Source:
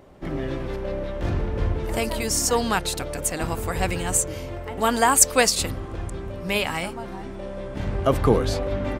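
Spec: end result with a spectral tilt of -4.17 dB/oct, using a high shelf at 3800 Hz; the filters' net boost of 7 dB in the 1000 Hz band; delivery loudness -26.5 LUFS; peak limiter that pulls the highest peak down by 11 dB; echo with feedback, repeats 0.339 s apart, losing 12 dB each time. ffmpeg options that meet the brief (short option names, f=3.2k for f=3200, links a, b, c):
-af "equalizer=f=1k:t=o:g=9,highshelf=f=3.8k:g=-4.5,alimiter=limit=-13dB:level=0:latency=1,aecho=1:1:339|678|1017:0.251|0.0628|0.0157,volume=-1dB"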